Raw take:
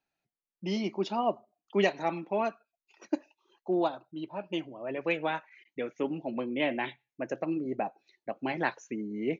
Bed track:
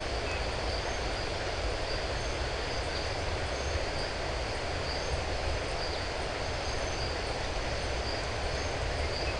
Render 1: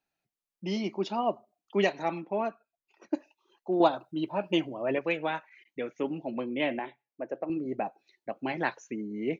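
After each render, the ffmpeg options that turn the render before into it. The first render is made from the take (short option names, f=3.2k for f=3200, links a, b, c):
-filter_complex "[0:a]asettb=1/sr,asplit=3[a][b][c];[a]atrim=end=2.224[d];[b]atrim=start=2.22:end=3.15,asetpts=PTS-STARTPTS,afade=t=in:d=0.004:c=qsin,afade=t=out:st=0.926:d=0.004:c=qsin,highshelf=f=2.4k:g=-10.5[e];[c]atrim=start=3.146[f];[d][e]acrossfade=d=0.004:c1=hsin:c2=qsin[g];[g][f]acrossfade=d=0.004:c1=qsin:c2=hsin,asettb=1/sr,asplit=3[h][i][j];[h]atrim=end=3.804[k];[i]atrim=start=3.8:end=4.99,asetpts=PTS-STARTPTS,afade=t=in:d=0.004:c=qsin,afade=t=out:st=1.186:d=0.004:c=qsin,acontrast=73[l];[j]atrim=start=4.986[m];[k][l]acrossfade=d=0.004:c1=hsin:c2=qsin[n];[n][m]acrossfade=d=0.004:c1=qsin:c2=hsin,asettb=1/sr,asplit=3[o][p][q];[o]atrim=end=6.794[r];[p]atrim=start=6.79:end=7.5,asetpts=PTS-STARTPTS,afade=t=in:d=0.004:c=qsin,afade=t=out:st=0.706:d=0.004:c=qsin,bandpass=f=580:t=q:w=0.81[s];[q]atrim=start=7.496[t];[r][s]acrossfade=d=0.004:c1=hsin:c2=qsin[u];[u][t]acrossfade=d=0.004:c1=qsin:c2=hsin"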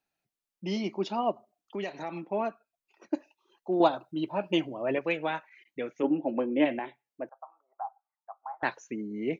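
-filter_complex "[0:a]asplit=3[a][b][c];[a]afade=t=out:st=1.31:d=0.02[d];[b]acompressor=threshold=-33dB:ratio=3:attack=3.2:release=140:knee=1:detection=peak,afade=t=in:st=1.31:d=0.02,afade=t=out:st=2.15:d=0.02[e];[c]afade=t=in:st=2.15:d=0.02[f];[d][e][f]amix=inputs=3:normalize=0,asplit=3[g][h][i];[g]afade=t=out:st=6.02:d=0.02[j];[h]highpass=120,equalizer=f=120:t=q:w=4:g=-3,equalizer=f=300:t=q:w=4:g=10,equalizer=f=530:t=q:w=4:g=7,equalizer=f=830:t=q:w=4:g=5,equalizer=f=1.6k:t=q:w=4:g=6,equalizer=f=2.2k:t=q:w=4:g=-4,lowpass=f=3k:w=0.5412,lowpass=f=3k:w=1.3066,afade=t=in:st=6.02:d=0.02,afade=t=out:st=6.64:d=0.02[k];[i]afade=t=in:st=6.64:d=0.02[l];[j][k][l]amix=inputs=3:normalize=0,asettb=1/sr,asplit=3[m][n][o];[m]atrim=end=7.294[p];[n]atrim=start=7.29:end=8.63,asetpts=PTS-STARTPTS,afade=t=in:d=0.004:c=qsin,afade=t=out:st=1.336:d=0.004:c=qsin,asuperpass=centerf=1000:order=8:qfactor=1.7[q];[o]atrim=start=8.626[r];[p][q]acrossfade=d=0.004:c1=hsin:c2=qsin[s];[s][r]acrossfade=d=0.004:c1=qsin:c2=hsin"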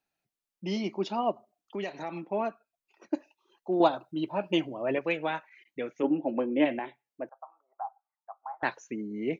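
-af anull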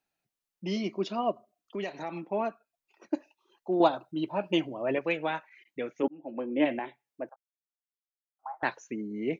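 -filter_complex "[0:a]asettb=1/sr,asplit=3[a][b][c];[a]atrim=end=0.684[d];[b]atrim=start=0.68:end=1.8,asetpts=PTS-STARTPTS,afade=t=in:d=0.004:c=qsin,afade=t=out:st=1.116:d=0.004:c=qsin,asuperstop=centerf=850:order=4:qfactor=4.6[e];[c]atrim=start=1.796[f];[d][e]acrossfade=d=0.004:c1=hsin:c2=qsin[g];[g][f]acrossfade=d=0.004:c1=qsin:c2=hsin,asplit=4[h][i][j][k];[h]atrim=end=6.08,asetpts=PTS-STARTPTS,afade=t=out:st=6.076:d=0.004:c=hsin[l];[i]atrim=start=6.08:end=7.36,asetpts=PTS-STARTPTS,afade=t=in:d=0.61,afade=t=out:st=1.276:d=0.004:c=hsin[m];[j]atrim=start=7.36:end=8.39,asetpts=PTS-STARTPTS,volume=0[n];[k]atrim=start=8.39,asetpts=PTS-STARTPTS,afade=t=in:d=0.004:c=hsin[o];[l][m][n][o]concat=n=4:v=0:a=1"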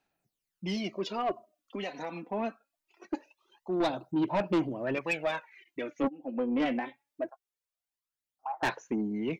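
-af "aphaser=in_gain=1:out_gain=1:delay=4.1:decay=0.58:speed=0.23:type=sinusoidal,asoftclip=type=tanh:threshold=-22.5dB"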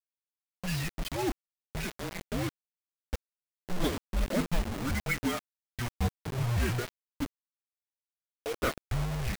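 -af "afreqshift=-360,acrusher=bits=5:mix=0:aa=0.000001"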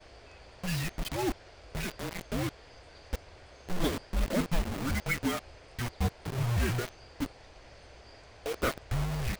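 -filter_complex "[1:a]volume=-19.5dB[a];[0:a][a]amix=inputs=2:normalize=0"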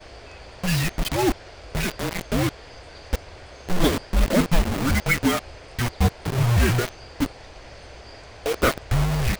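-af "volume=10dB"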